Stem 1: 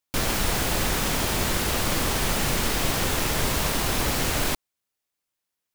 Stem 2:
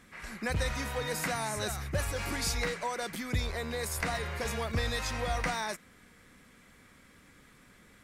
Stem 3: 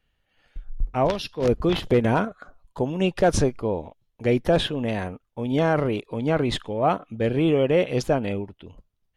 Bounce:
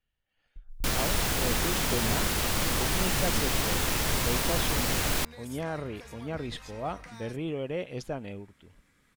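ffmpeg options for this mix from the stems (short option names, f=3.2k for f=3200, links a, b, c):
-filter_complex "[0:a]adelay=700,volume=-2.5dB[a];[1:a]acompressor=threshold=-35dB:ratio=6,adelay=1600,volume=-8dB[b];[2:a]volume=-11dB[c];[a][b][c]amix=inputs=3:normalize=0,equalizer=f=460:t=o:w=2.6:g=-2.5"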